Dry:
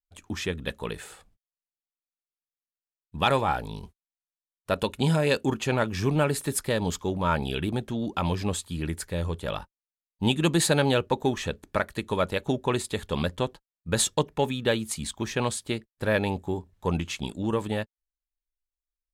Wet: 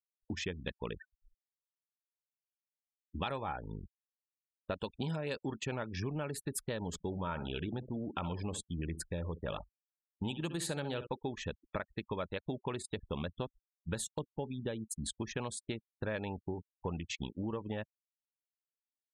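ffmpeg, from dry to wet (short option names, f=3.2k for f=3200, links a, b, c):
-filter_complex "[0:a]asettb=1/sr,asplit=3[a][b][c];[a]atrim=end=1.004[d];[b]atrim=start=1:end=3.21,asetpts=PTS-STARTPTS,afade=t=in:d=0.004:c=qsin,afade=t=out:st=2.206:d=0.004:c=qsin,aecho=1:1:3.3:0.85,atrim=end_sample=97461[e];[c]atrim=start=3.206[f];[d][e]acrossfade=d=0.004:c1=hsin:c2=qsin[g];[g][f]acrossfade=d=0.004:c1=qsin:c2=hsin,asettb=1/sr,asplit=3[h][i][j];[h]atrim=end=6.874[k];[i]atrim=start=6.87:end=11.07,asetpts=PTS-STARTPTS,afade=t=in:d=0.004:c=qsin,afade=t=out:st=4.196:d=0.004:c=qsin,aecho=1:1:63|126|189|252:0.237|0.0901|0.0342|0.013,atrim=end_sample=185220[l];[j]atrim=start=11.066[m];[k][l]acrossfade=d=0.004:c1=hsin:c2=qsin[n];[n][m]acrossfade=d=0.004:c1=qsin:c2=hsin,asettb=1/sr,asplit=3[o][p][q];[o]atrim=end=13.984[r];[p]atrim=start=13.98:end=15.04,asetpts=PTS-STARTPTS,afade=t=in:d=0.004:c=qsin,afade=t=out:st=1.056:d=0.004:c=qsin,equalizer=f=2.3k:w=0.3:g=-7.5[s];[q]atrim=start=15.036[t];[r][s]acrossfade=d=0.004:c1=hsin:c2=qsin[u];[u][t]acrossfade=d=0.004:c1=qsin:c2=hsin,anlmdn=3.98,afftfilt=real='re*gte(hypot(re,im),0.0126)':imag='im*gte(hypot(re,im),0.0126)':win_size=1024:overlap=0.75,acompressor=threshold=-31dB:ratio=6,volume=-3.5dB"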